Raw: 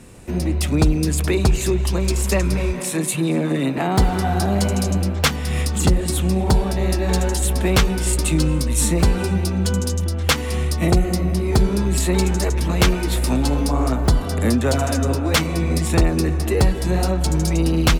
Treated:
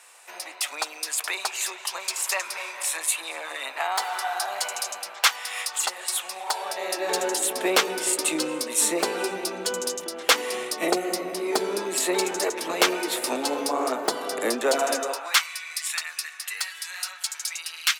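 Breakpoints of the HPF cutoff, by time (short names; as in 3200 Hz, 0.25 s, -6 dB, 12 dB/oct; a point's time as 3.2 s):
HPF 24 dB/oct
6.47 s 790 Hz
7.23 s 370 Hz
14.94 s 370 Hz
15.51 s 1500 Hz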